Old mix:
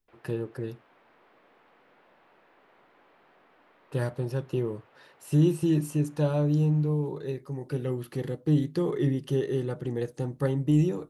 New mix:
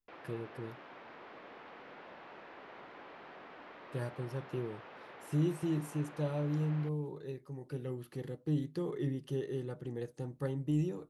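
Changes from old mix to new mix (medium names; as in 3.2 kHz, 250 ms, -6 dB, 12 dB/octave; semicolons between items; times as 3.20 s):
speech -9.5 dB; background +9.5 dB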